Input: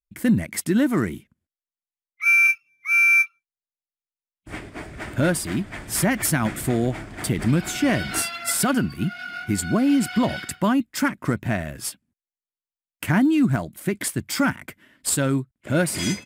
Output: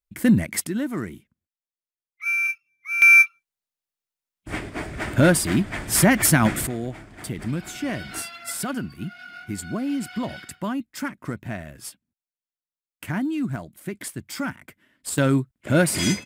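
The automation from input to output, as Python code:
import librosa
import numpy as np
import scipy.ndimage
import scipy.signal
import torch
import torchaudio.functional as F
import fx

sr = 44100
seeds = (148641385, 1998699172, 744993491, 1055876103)

y = fx.gain(x, sr, db=fx.steps((0.0, 2.0), (0.67, -7.0), (3.02, 4.5), (6.67, -7.5), (15.18, 2.5)))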